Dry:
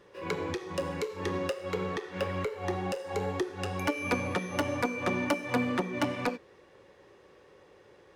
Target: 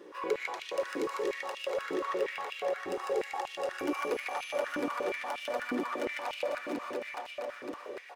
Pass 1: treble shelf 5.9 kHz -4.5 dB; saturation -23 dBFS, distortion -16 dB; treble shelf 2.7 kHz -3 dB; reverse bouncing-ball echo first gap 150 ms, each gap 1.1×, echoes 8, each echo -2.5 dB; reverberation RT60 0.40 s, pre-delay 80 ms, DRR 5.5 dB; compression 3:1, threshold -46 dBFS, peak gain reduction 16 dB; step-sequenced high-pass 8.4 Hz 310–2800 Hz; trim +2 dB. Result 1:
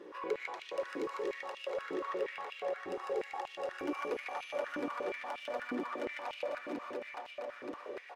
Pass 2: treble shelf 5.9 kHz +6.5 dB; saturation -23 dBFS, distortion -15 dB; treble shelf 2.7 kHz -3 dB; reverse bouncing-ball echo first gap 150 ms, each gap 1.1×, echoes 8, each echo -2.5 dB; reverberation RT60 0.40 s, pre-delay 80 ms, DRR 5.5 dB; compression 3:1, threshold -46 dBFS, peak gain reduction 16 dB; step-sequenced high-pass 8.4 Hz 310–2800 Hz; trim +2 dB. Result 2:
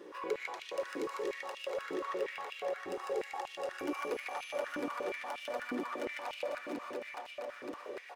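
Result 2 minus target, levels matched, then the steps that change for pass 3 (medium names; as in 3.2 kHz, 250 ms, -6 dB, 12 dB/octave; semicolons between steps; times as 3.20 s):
compression: peak gain reduction +4.5 dB
change: compression 3:1, threshold -39.5 dBFS, peak gain reduction 12 dB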